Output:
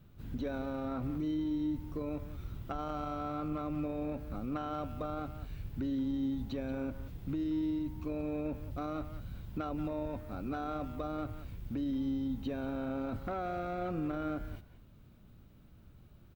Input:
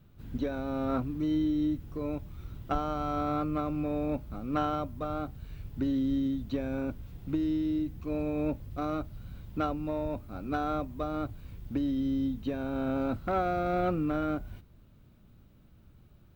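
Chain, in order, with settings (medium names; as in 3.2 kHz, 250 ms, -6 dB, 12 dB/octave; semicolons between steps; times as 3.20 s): peak limiter -28.5 dBFS, peak gain reduction 11.5 dB; speakerphone echo 180 ms, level -10 dB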